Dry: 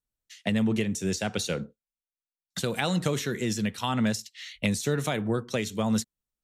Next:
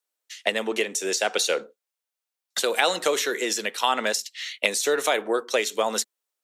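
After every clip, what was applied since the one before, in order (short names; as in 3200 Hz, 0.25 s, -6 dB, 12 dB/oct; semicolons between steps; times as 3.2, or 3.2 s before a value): HPF 400 Hz 24 dB/oct; gain +8 dB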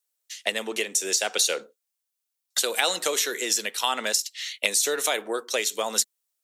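high shelf 3600 Hz +11.5 dB; gain -5 dB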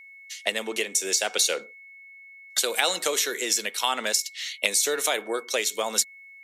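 whine 2200 Hz -45 dBFS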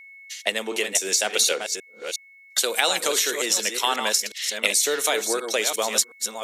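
reverse delay 0.36 s, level -6.5 dB; gain +2 dB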